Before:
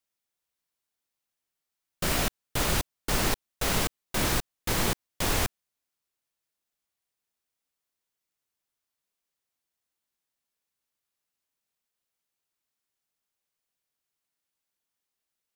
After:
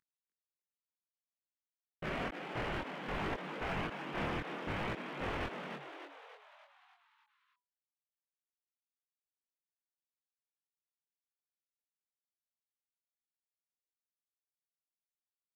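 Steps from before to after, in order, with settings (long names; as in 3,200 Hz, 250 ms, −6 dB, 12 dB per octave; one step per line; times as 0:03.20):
variable-slope delta modulation 16 kbit/s
low-shelf EQ 74 Hz −11.5 dB
hard clipping −28.5 dBFS, distortion −12 dB
multi-voice chorus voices 2, 0.6 Hz, delay 22 ms, depth 3.7 ms
echo with shifted repeats 296 ms, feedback 53%, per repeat +140 Hz, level −6.5 dB
level −2 dB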